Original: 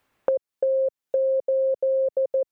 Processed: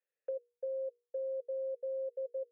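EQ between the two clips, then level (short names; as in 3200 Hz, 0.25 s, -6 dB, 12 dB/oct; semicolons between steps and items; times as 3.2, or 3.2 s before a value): vowel filter e; rippled Chebyshev high-pass 310 Hz, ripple 9 dB; notches 60/120/180/240/300/360/420/480 Hz; -7.5 dB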